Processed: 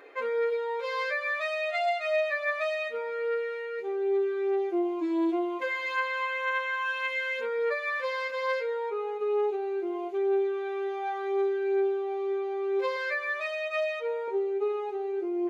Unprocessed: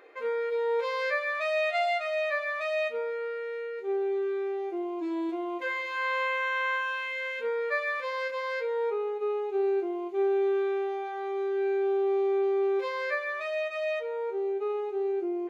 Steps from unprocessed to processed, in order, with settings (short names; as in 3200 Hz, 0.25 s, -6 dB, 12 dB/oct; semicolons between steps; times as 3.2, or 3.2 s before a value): 12.96–14.28 low shelf 270 Hz -10.5 dB; compressor, threshold -30 dBFS, peak gain reduction 7 dB; flange 0.69 Hz, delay 6.9 ms, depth 2.8 ms, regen +34%; gain +7.5 dB